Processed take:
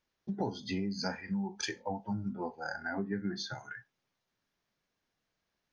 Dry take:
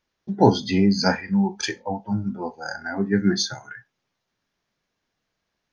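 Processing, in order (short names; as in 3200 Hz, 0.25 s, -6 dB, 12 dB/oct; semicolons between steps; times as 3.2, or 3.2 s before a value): 2.33–3.59 LPF 4200 Hz 12 dB/oct; compressor 8:1, threshold -26 dBFS, peak gain reduction 16.5 dB; gain -5.5 dB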